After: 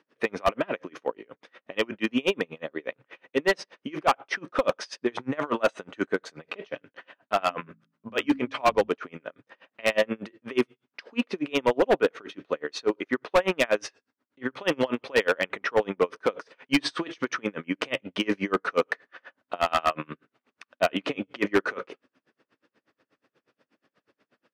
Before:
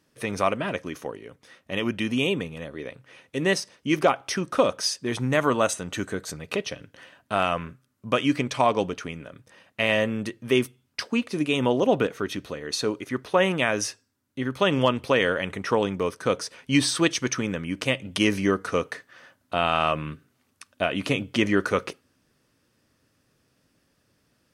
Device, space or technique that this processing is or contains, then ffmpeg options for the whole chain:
helicopter radio: -filter_complex "[0:a]highpass=310,lowpass=2700,aeval=exprs='val(0)*pow(10,-33*(0.5-0.5*cos(2*PI*8.3*n/s))/20)':channel_layout=same,asoftclip=type=hard:threshold=-23.5dB,asettb=1/sr,asplit=3[link_01][link_02][link_03];[link_01]atrim=end=7.374[link_04];[link_02]atrim=start=7.37:end=8.9,asetpts=PTS-STARTPTS,afade=type=in:duration=0.004:curve=qsin,afade=type=out:start_time=1.526:duration=0.004:curve=qsin,bandreject=frequency=54.31:width_type=h:width=4,bandreject=frequency=108.62:width_type=h:width=4,bandreject=frequency=162.93:width_type=h:width=4,bandreject=frequency=217.24:width_type=h:width=4,bandreject=frequency=271.55:width_type=h:width=4[link_05];[link_03]atrim=start=8.896[link_06];[link_04][link_05]acrossfade=duration=0.004:curve1=hsin:curve2=qsin[link_07];[link_07][link_06]acrossfade=duration=0.004:curve1=qsin:curve2=hsin,volume=9dB"

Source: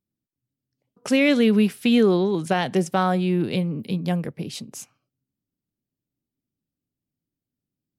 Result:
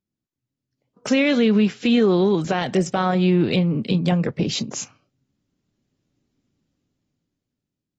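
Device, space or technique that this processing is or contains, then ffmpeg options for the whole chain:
low-bitrate web radio: -filter_complex "[0:a]asplit=3[link_01][link_02][link_03];[link_01]afade=type=out:start_time=3.73:duration=0.02[link_04];[link_02]highpass=frequency=110:width=0.5412,highpass=frequency=110:width=1.3066,afade=type=in:start_time=3.73:duration=0.02,afade=type=out:start_time=4.28:duration=0.02[link_05];[link_03]afade=type=in:start_time=4.28:duration=0.02[link_06];[link_04][link_05][link_06]amix=inputs=3:normalize=0,dynaudnorm=framelen=270:gausssize=9:maxgain=14.5dB,alimiter=limit=-10dB:level=0:latency=1:release=200" -ar 32000 -c:a aac -b:a 24k

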